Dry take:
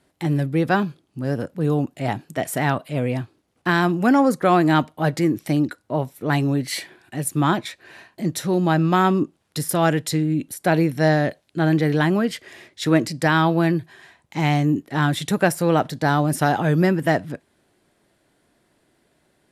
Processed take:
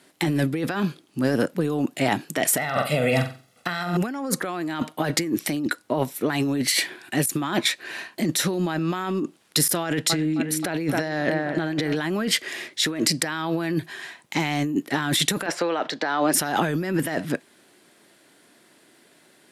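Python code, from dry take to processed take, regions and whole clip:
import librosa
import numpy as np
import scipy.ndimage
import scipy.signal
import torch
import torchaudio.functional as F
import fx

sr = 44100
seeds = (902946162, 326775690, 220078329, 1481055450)

y = fx.chain(x, sr, fx.comb(ms=1.5, depth=0.73),
    fx.room_flutter(wall_m=7.8, rt60_s=0.36), at=(2.57, 3.97))
y = fx.chain(y, sr, fx.high_shelf(hz=9200.0, db=-10.0),
    fx.echo_wet_lowpass(ms=265, feedback_pct=54, hz=2300.0, wet_db=-14), at=(9.83, 11.96))
y = fx.chain(y, sr, fx.highpass(hz=410.0, slope=12),
    fx.air_absorb(metres=160.0),
    fx.band_squash(depth_pct=40), at=(15.46, 16.34))
y = scipy.signal.sosfilt(scipy.signal.butter(2, 270.0, 'highpass', fs=sr, output='sos'), y)
y = fx.peak_eq(y, sr, hz=650.0, db=-6.5, octaves=2.0)
y = fx.over_compress(y, sr, threshold_db=-31.0, ratio=-1.0)
y = y * 10.0 ** (7.0 / 20.0)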